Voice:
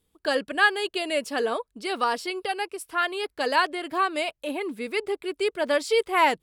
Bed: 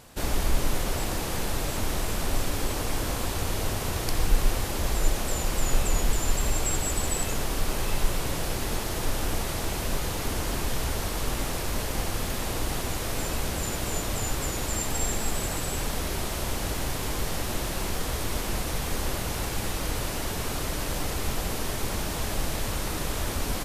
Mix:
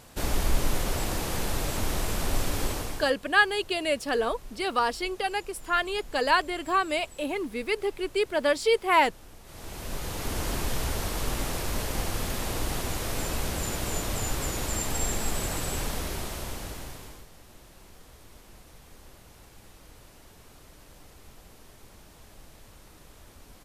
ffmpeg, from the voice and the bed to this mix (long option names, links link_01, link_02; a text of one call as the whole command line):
ffmpeg -i stem1.wav -i stem2.wav -filter_complex "[0:a]adelay=2750,volume=-0.5dB[link_01];[1:a]volume=20dB,afade=type=out:start_time=2.66:duration=0.47:silence=0.0891251,afade=type=in:start_time=9.43:duration=1.02:silence=0.0944061,afade=type=out:start_time=15.76:duration=1.51:silence=0.0891251[link_02];[link_01][link_02]amix=inputs=2:normalize=0" out.wav